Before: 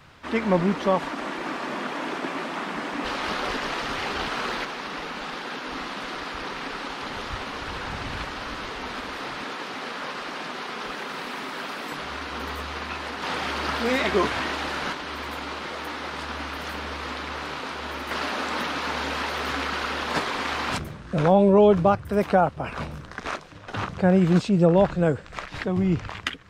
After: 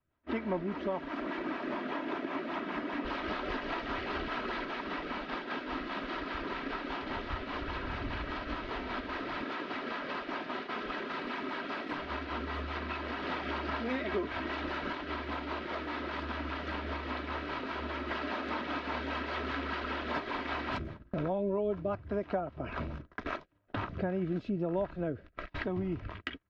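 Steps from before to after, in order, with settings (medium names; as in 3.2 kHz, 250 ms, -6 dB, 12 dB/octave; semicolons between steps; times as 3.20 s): rotary cabinet horn 5 Hz, later 1.1 Hz, at 23.46 s; gate -38 dBFS, range -29 dB; distance through air 270 m; comb 3.1 ms, depth 42%; compression 3:1, threshold -37 dBFS, peak gain reduction 17.5 dB; tape noise reduction on one side only decoder only; trim +2.5 dB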